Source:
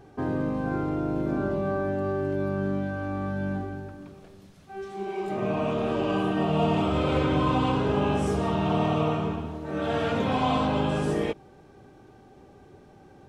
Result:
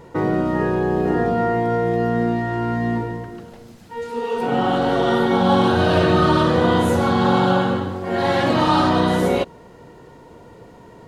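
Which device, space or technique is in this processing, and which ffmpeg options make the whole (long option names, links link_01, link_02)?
nightcore: -af "asetrate=52920,aresample=44100,volume=8dB"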